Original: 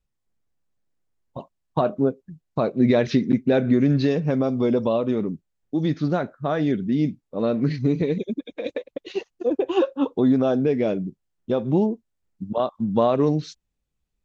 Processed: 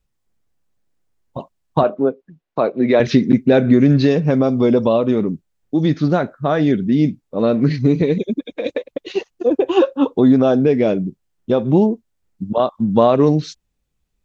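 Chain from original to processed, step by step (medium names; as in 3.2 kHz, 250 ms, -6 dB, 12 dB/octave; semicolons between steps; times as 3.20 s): 1.83–3.00 s: three-band isolator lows -13 dB, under 280 Hz, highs -14 dB, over 3.9 kHz; trim +6.5 dB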